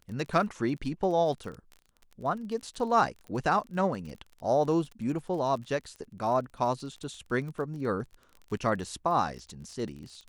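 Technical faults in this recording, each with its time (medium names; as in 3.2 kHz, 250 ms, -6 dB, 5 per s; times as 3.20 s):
crackle 29 per s -38 dBFS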